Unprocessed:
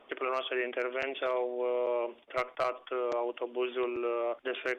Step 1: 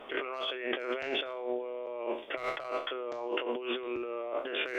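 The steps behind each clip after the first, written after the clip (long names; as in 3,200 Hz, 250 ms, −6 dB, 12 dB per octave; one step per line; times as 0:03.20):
peak hold with a decay on every bin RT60 0.40 s
compressor whose output falls as the input rises −39 dBFS, ratio −1
level +3 dB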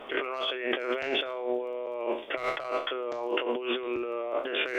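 surface crackle 11 per second −51 dBFS
level +4 dB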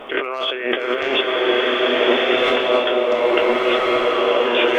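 slow-attack reverb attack 1,430 ms, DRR −4.5 dB
level +8.5 dB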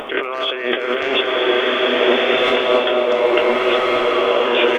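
upward compression, threshold −25 dBFS
on a send: single-tap delay 234 ms −10.5 dB
on the sum: level +1 dB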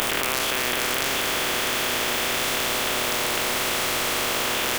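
compressing power law on the bin magnitudes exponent 0.24
envelope flattener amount 100%
level −12 dB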